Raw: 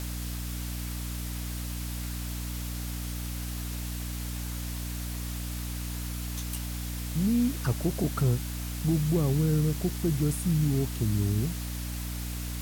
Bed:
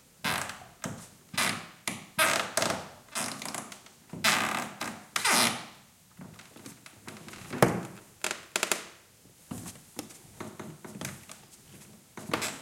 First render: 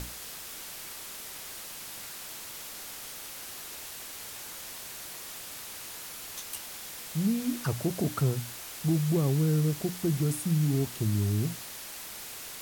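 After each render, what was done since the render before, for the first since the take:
mains-hum notches 60/120/180/240/300 Hz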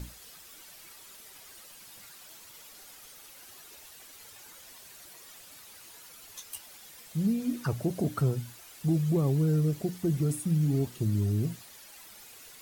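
broadband denoise 11 dB, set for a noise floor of −42 dBFS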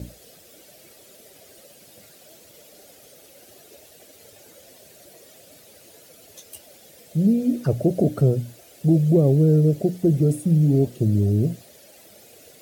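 high-pass filter 76 Hz
low shelf with overshoot 770 Hz +8.5 dB, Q 3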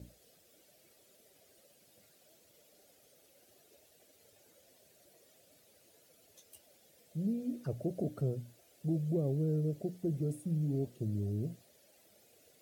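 level −16 dB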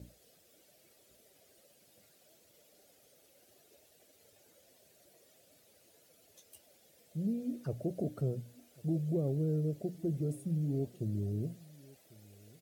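single-tap delay 1,097 ms −23 dB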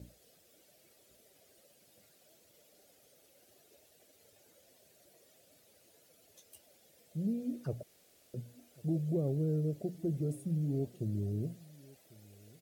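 0:07.83–0:08.34: fill with room tone

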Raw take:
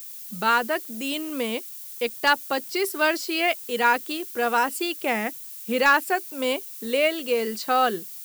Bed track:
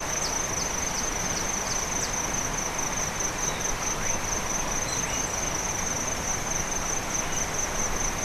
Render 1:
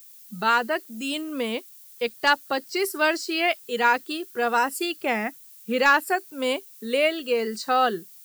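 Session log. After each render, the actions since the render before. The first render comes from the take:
noise reduction from a noise print 9 dB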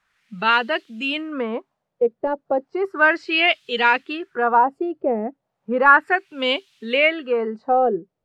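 in parallel at −11 dB: soft clipping −17.5 dBFS, distortion −12 dB
on the sum: auto-filter low-pass sine 0.34 Hz 510–3,300 Hz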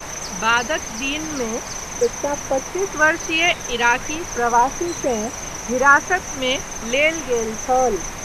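mix in bed track −1.5 dB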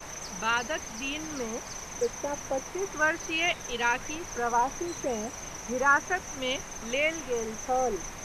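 level −10 dB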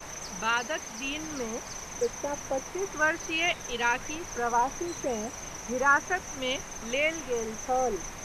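0:00.49–0:01.04: low-shelf EQ 110 Hz −8.5 dB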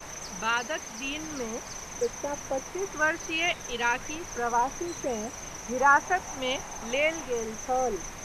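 0:05.77–0:07.25: parametric band 820 Hz +7.5 dB 0.59 octaves

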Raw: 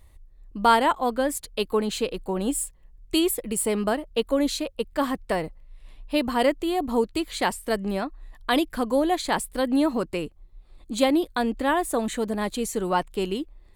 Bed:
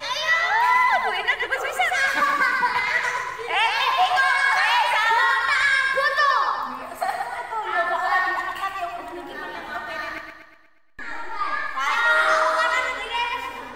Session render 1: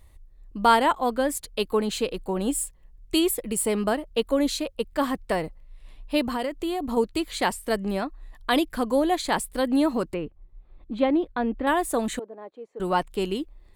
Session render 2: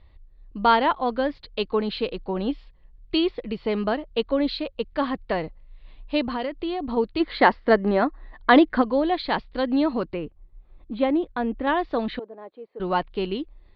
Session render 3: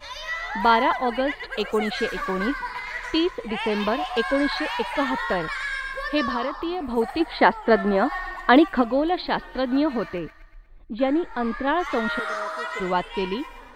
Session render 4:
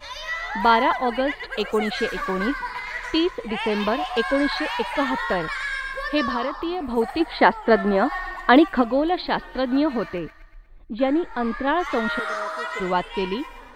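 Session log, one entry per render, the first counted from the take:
0:06.24–0:06.97: downward compressor 12 to 1, threshold −23 dBFS; 0:10.14–0:11.67: high-frequency loss of the air 460 metres; 0:12.19–0:12.80: four-pole ladder band-pass 600 Hz, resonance 25%
Butterworth low-pass 4,600 Hz 72 dB per octave; 0:07.20–0:08.82: gain on a spectral selection 200–2,200 Hz +8 dB
mix in bed −10 dB
level +1 dB

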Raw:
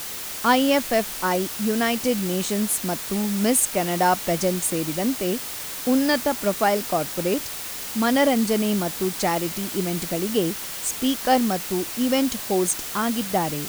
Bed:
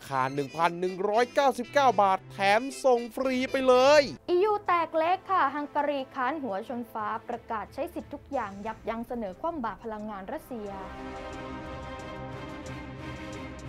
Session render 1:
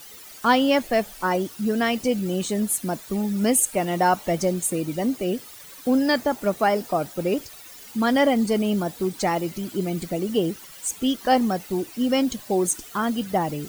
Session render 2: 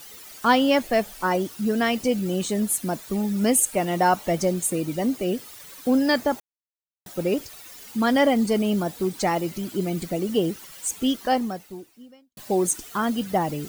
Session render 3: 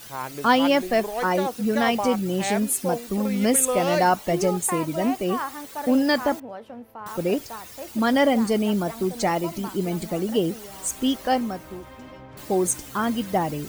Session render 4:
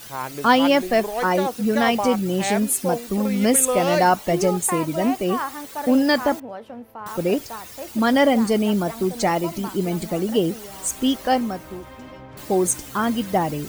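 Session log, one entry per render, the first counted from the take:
broadband denoise 14 dB, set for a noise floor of −33 dBFS
0:06.40–0:07.06: silence; 0:11.12–0:12.37: fade out quadratic
mix in bed −5 dB
level +2.5 dB

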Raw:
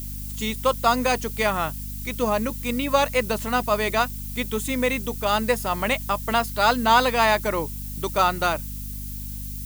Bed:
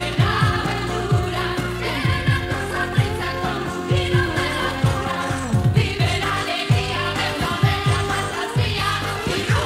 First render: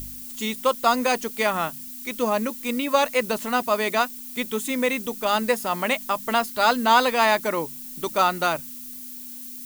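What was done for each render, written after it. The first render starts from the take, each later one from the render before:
hum removal 50 Hz, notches 4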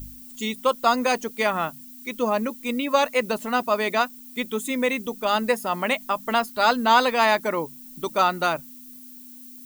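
broadband denoise 9 dB, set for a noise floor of −38 dBFS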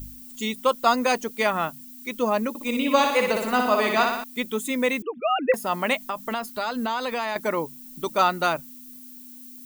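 0:02.49–0:04.24: flutter between parallel walls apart 10.3 metres, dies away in 0.83 s
0:05.02–0:05.54: three sine waves on the formant tracks
0:06.05–0:07.36: downward compressor 10 to 1, threshold −23 dBFS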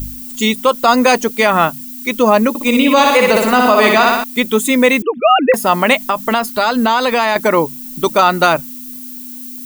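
boost into a limiter +13.5 dB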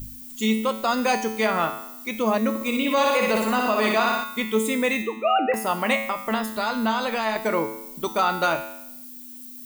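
tuned comb filter 110 Hz, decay 0.79 s, harmonics all, mix 80%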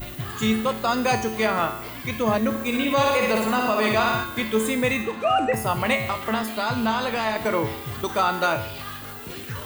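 mix in bed −15 dB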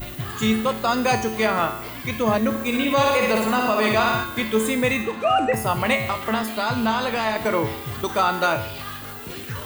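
level +1.5 dB

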